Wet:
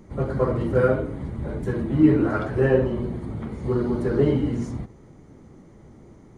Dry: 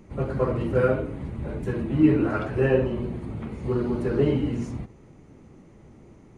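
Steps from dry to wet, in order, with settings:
parametric band 2,600 Hz −11 dB 0.24 octaves
level +2 dB

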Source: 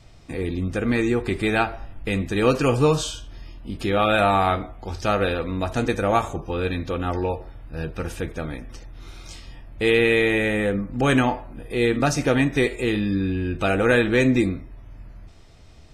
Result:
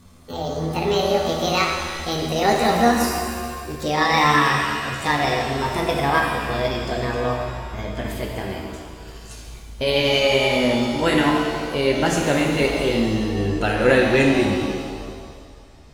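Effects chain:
pitch glide at a constant tempo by +9.5 semitones ending unshifted
reverb with rising layers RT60 1.9 s, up +7 semitones, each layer −8 dB, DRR 0.5 dB

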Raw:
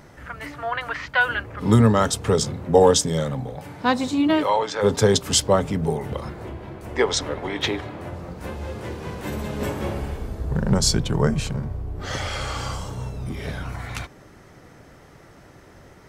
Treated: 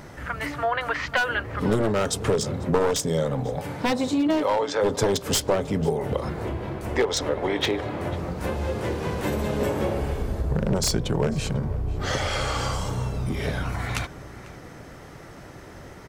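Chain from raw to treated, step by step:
wavefolder on the positive side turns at −14.5 dBFS
dynamic equaliser 510 Hz, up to +6 dB, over −36 dBFS, Q 1.2
downward compressor 3 to 1, threshold −28 dBFS, peak gain reduction 14.5 dB
slap from a distant wall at 85 metres, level −17 dB
level +5 dB

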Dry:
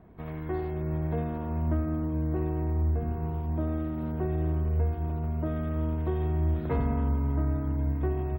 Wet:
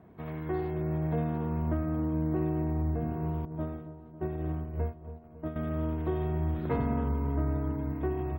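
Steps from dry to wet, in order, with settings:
high-pass filter 91 Hz 12 dB per octave
0:03.45–0:05.56: noise gate −29 dBFS, range −22 dB
delay with a low-pass on its return 275 ms, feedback 57%, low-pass 1,100 Hz, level −12 dB

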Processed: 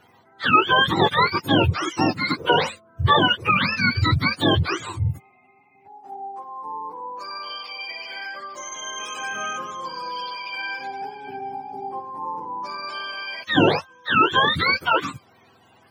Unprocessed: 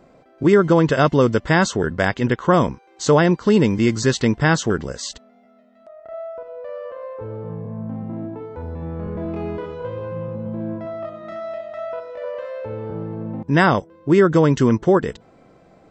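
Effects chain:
frequency axis turned over on the octave scale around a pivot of 720 Hz

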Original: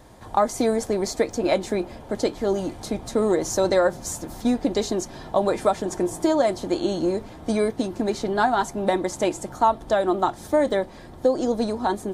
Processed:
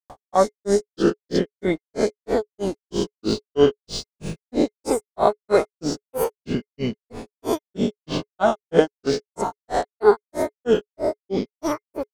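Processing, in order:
peak hold with a rise ahead of every peak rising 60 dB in 0.80 s
granular cloud 173 ms, grains 3.1 per second, pitch spread up and down by 7 semitones
hollow resonant body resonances 420/2,100 Hz, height 8 dB, ringing for 65 ms
level +3 dB

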